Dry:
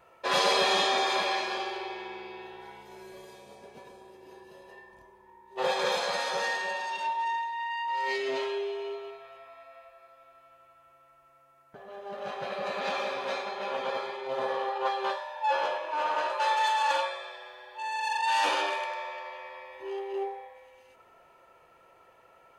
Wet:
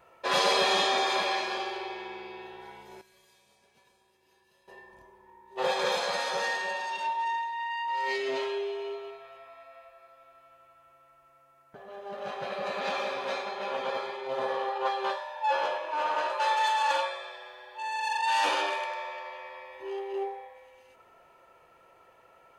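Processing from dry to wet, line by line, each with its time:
0:03.01–0:04.68: guitar amp tone stack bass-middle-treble 5-5-5

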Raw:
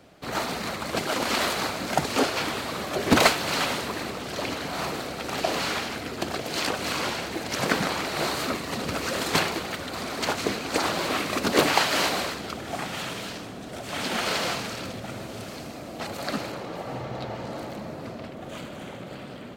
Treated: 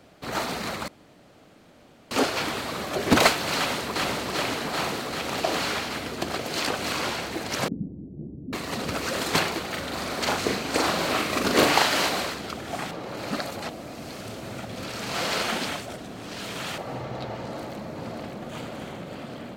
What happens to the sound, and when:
0:00.88–0:02.11: fill with room tone
0:03.56–0:04.01: delay throw 390 ms, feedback 80%, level −2 dB
0:07.68–0:08.53: inverse Chebyshev low-pass filter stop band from 1,600 Hz, stop band 80 dB
0:09.70–0:11.94: double-tracking delay 41 ms −3.5 dB
0:12.91–0:16.78: reverse
0:17.37–0:18.42: delay throw 580 ms, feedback 70%, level −5 dB

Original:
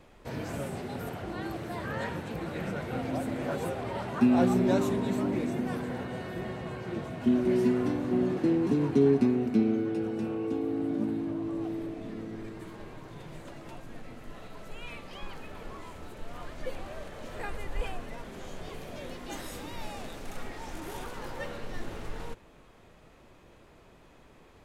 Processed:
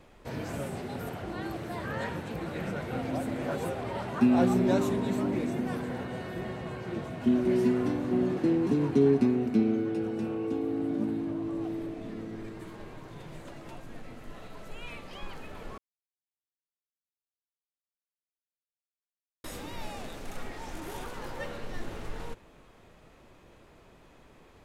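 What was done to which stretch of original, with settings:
0:15.78–0:19.44: silence

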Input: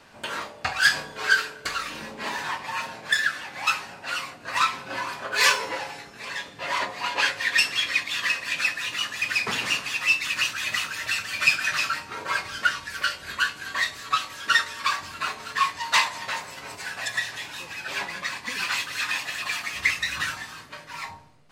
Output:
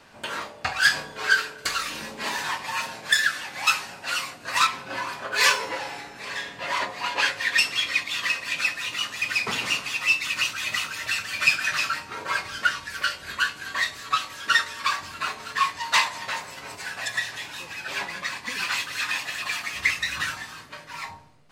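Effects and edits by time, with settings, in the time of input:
0:01.58–0:04.67: high-shelf EQ 3,600 Hz +7.5 dB
0:05.77–0:06.55: thrown reverb, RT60 0.83 s, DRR 3.5 dB
0:07.58–0:11.08: notch filter 1,700 Hz, Q 11

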